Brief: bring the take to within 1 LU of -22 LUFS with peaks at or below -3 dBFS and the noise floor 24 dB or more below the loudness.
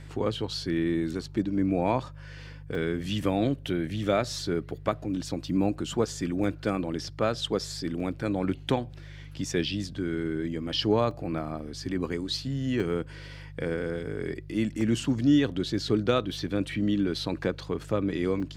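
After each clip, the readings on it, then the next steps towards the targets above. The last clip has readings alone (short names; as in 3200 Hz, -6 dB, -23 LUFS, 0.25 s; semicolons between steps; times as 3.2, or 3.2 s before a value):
dropouts 7; longest dropout 2.8 ms; hum 50 Hz; harmonics up to 150 Hz; hum level -42 dBFS; loudness -29.0 LUFS; peak -10.0 dBFS; loudness target -22.0 LUFS
-> interpolate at 2.75/6.44/8/11.11/12.8/14.81/18.4, 2.8 ms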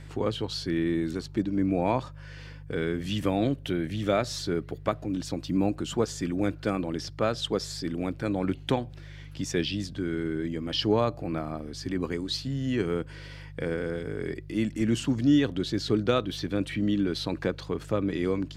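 dropouts 0; hum 50 Hz; harmonics up to 150 Hz; hum level -42 dBFS
-> de-hum 50 Hz, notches 3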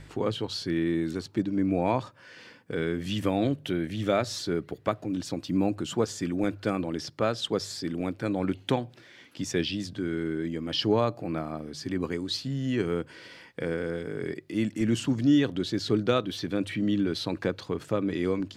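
hum none; loudness -29.0 LUFS; peak -10.5 dBFS; loudness target -22.0 LUFS
-> gain +7 dB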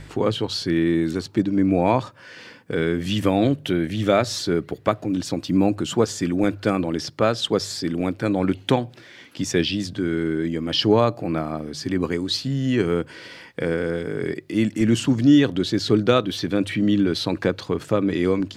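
loudness -22.0 LUFS; peak -3.5 dBFS; noise floor -46 dBFS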